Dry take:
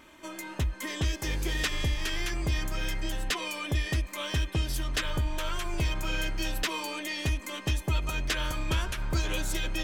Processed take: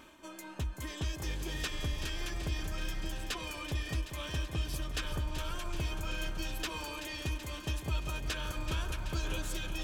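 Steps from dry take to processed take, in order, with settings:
notch filter 2,000 Hz, Q 6.8
reversed playback
upward compression, threshold −37 dBFS
reversed playback
delay that swaps between a low-pass and a high-pass 190 ms, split 1,500 Hz, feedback 83%, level −8 dB
level −7 dB

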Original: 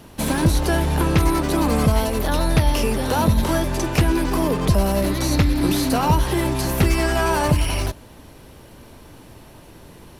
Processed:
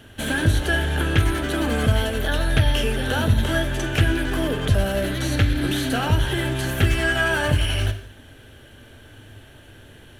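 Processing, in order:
thirty-one-band graphic EQ 100 Hz +10 dB, 160 Hz −9 dB, 1,000 Hz −10 dB, 1,600 Hz +12 dB, 3,150 Hz +11 dB, 5,000 Hz −8 dB, 12,500 Hz −5 dB
reverb whose tail is shaped and stops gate 260 ms falling, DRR 8.5 dB
level −4 dB

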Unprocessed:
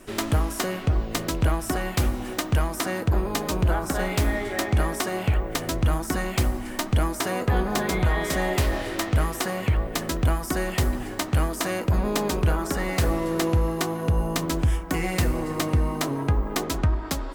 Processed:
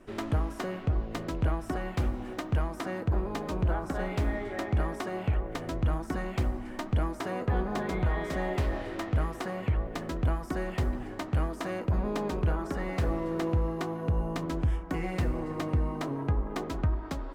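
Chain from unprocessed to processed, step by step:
low-pass filter 1,600 Hz 6 dB per octave
level −5.5 dB

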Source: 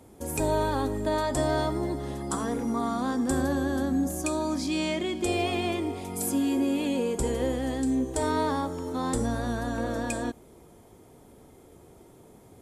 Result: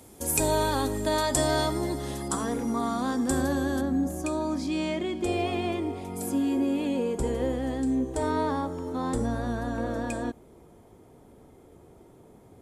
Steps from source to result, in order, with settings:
high-shelf EQ 2,600 Hz +10 dB, from 0:02.28 +3 dB, from 0:03.81 −7 dB

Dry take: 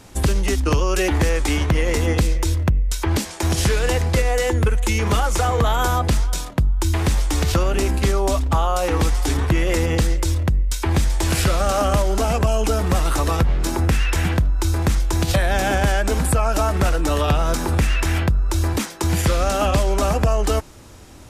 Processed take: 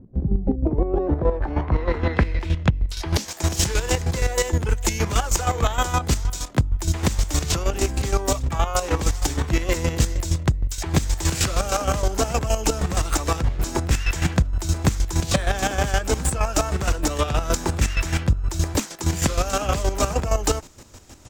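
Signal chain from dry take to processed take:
low-pass filter sweep 210 Hz → 7,300 Hz, 0:00.34–0:03.35
pitch-shifted copies added −5 semitones −16 dB, +12 semitones −12 dB
square-wave tremolo 6.4 Hz, depth 65%, duty 30%

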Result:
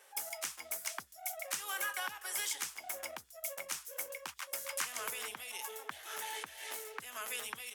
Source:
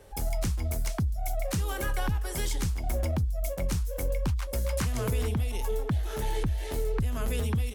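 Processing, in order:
high-pass filter 1,200 Hz 12 dB per octave
parametric band 4,200 Hz −5 dB 0.43 octaves
level +1 dB

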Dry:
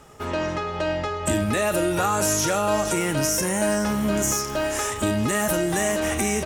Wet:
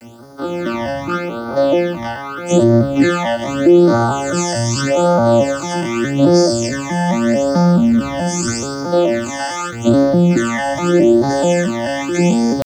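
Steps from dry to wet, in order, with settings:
vocoder with an arpeggio as carrier minor triad, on A#2, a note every 110 ms
high-shelf EQ 3,200 Hz +7.5 dB
comb filter 3.4 ms, depth 84%
reversed playback
upward compression, threshold −31 dBFS
reversed playback
bit reduction 10 bits
tempo change 0.51×
all-pass phaser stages 12, 0.82 Hz, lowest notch 400–2,700 Hz
boost into a limiter +12.5 dB
level −1 dB

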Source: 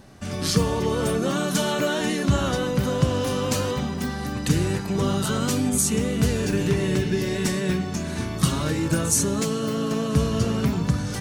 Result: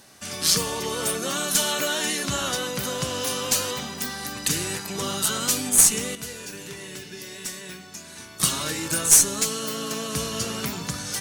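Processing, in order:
spectral tilt +3.5 dB per octave
tube saturation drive 4 dB, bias 0.45
0:06.15–0:08.40: tuned comb filter 490 Hz, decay 0.46 s, mix 70%

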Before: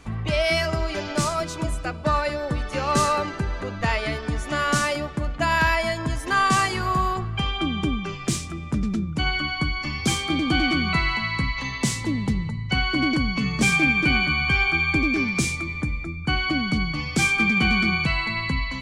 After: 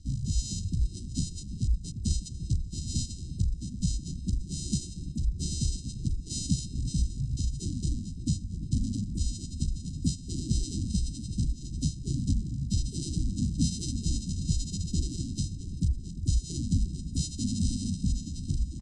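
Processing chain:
samples sorted by size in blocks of 64 samples
reverb reduction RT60 1.1 s
inverse Chebyshev band-stop filter 680–3,500 Hz, stop band 60 dB
high-shelf EQ 2,400 Hz +5.5 dB
feedback echo with a low-pass in the loop 345 ms, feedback 72%, low-pass 2,800 Hz, level −11.5 dB
pitch-shifted copies added −12 semitones −1 dB, +3 semitones −1 dB, +4 semitones −2 dB
elliptic low-pass filter 7,800 Hz, stop band 60 dB
comb filter 1 ms, depth 72%
level −7.5 dB

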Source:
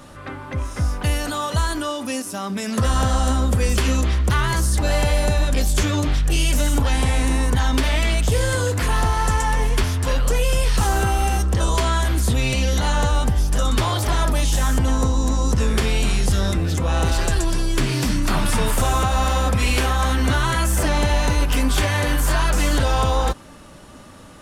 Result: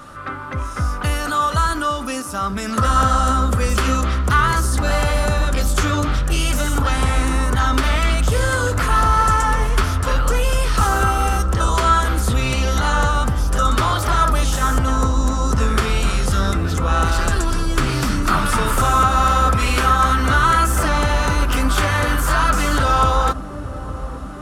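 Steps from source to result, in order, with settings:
parametric band 1,300 Hz +13.5 dB 0.44 octaves
on a send: delay with a low-pass on its return 862 ms, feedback 78%, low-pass 650 Hz, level −12 dB

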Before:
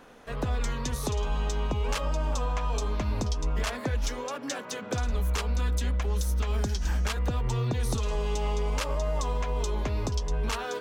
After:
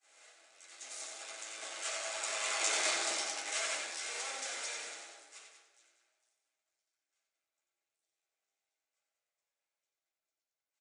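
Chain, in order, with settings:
sign of each sample alone
source passing by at 0:02.82, 18 m/s, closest 4.5 metres
noise gate −48 dBFS, range −36 dB
parametric band 1,000 Hz −9.5 dB 0.35 octaves
loudspeakers that aren't time-aligned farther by 31 metres −6 dB, 65 metres −10 dB
in parallel at −7 dB: soft clipping −37.5 dBFS, distortion −5 dB
on the sum: high-pass filter 480 Hz 24 dB per octave
high-shelf EQ 7,300 Hz +10 dB
convolution reverb RT60 1.1 s, pre-delay 3 ms, DRR −4 dB
level −4.5 dB
MP3 56 kbit/s 22,050 Hz

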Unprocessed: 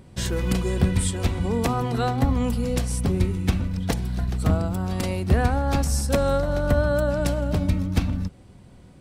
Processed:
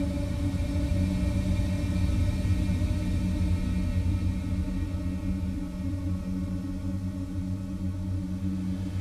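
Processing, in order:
variable-slope delta modulation 64 kbit/s
extreme stretch with random phases 37×, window 0.25 s, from 0:07.65
level −5.5 dB

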